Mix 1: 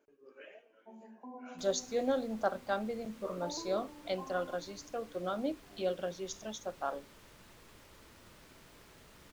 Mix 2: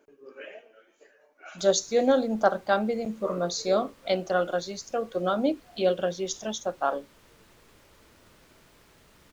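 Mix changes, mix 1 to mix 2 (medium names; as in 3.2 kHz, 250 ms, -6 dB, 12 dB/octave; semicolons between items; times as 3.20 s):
speech +10.0 dB; first sound: muted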